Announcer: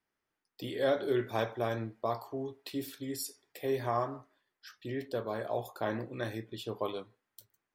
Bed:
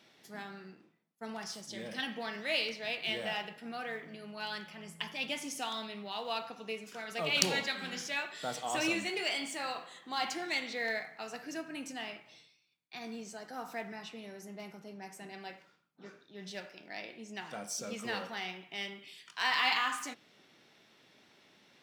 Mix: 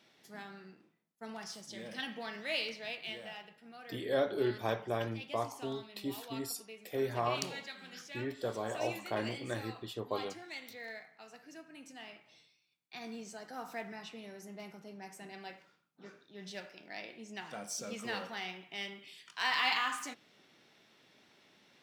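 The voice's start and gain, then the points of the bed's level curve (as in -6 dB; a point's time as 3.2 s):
3.30 s, -2.0 dB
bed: 2.78 s -3 dB
3.36 s -11 dB
11.72 s -11 dB
12.73 s -1.5 dB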